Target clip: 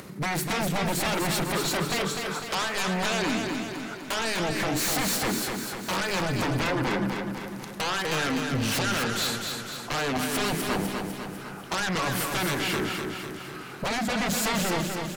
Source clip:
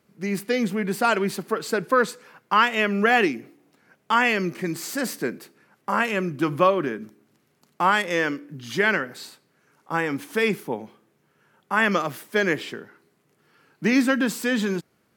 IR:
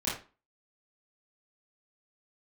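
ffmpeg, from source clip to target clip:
-filter_complex "[0:a]asplit=2[link_01][link_02];[1:a]atrim=start_sample=2205,asetrate=43218,aresample=44100[link_03];[link_02][link_03]afir=irnorm=-1:irlink=0,volume=-21dB[link_04];[link_01][link_04]amix=inputs=2:normalize=0,acompressor=threshold=-30dB:ratio=10,asetrate=40440,aresample=44100,atempo=1.09051,aeval=exprs='0.141*sin(PI/2*7.94*val(0)/0.141)':channel_layout=same,acompressor=mode=upward:threshold=-29dB:ratio=2.5,aecho=1:1:250|500|750|1000|1250|1500|1750:0.562|0.315|0.176|0.0988|0.0553|0.031|0.0173,volume=-7.5dB"

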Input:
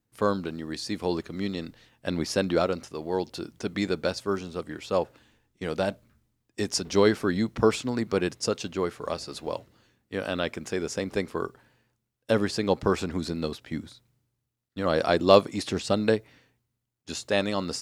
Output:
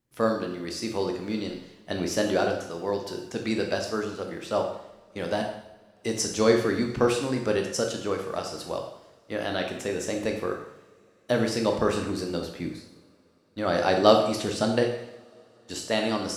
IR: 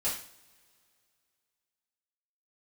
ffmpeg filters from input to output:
-filter_complex "[0:a]asplit=2[link_01][link_02];[1:a]atrim=start_sample=2205,asetrate=24696,aresample=44100,adelay=14[link_03];[link_02][link_03]afir=irnorm=-1:irlink=0,volume=-12.5dB[link_04];[link_01][link_04]amix=inputs=2:normalize=0,asetrate=48000,aresample=44100,volume=-1.5dB"

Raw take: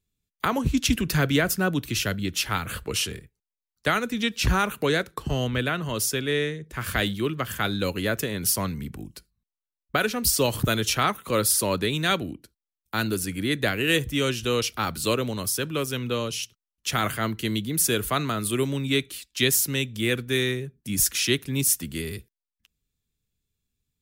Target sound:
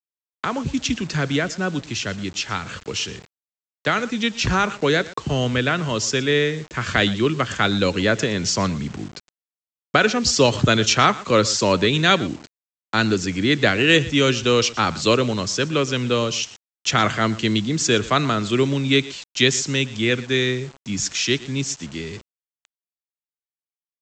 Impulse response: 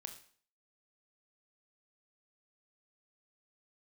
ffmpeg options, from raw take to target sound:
-af "aecho=1:1:118:0.112,dynaudnorm=framelen=560:gausssize=17:maxgain=12dB,highpass=93,aresample=16000,acrusher=bits=6:mix=0:aa=0.000001,aresample=44100"

